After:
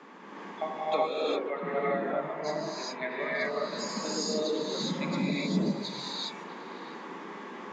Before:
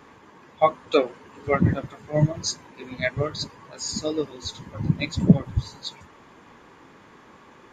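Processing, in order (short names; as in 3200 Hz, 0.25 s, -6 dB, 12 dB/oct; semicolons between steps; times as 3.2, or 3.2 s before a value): 1.1–3.45 three-band isolator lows -13 dB, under 420 Hz, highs -17 dB, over 2700 Hz; steep high-pass 160 Hz 96 dB/oct; compressor 4:1, threshold -34 dBFS, peak gain reduction 19.5 dB; air absorption 87 m; delay with a stepping band-pass 0.108 s, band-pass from 320 Hz, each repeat 0.7 oct, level -6 dB; non-linear reverb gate 0.43 s rising, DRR -7.5 dB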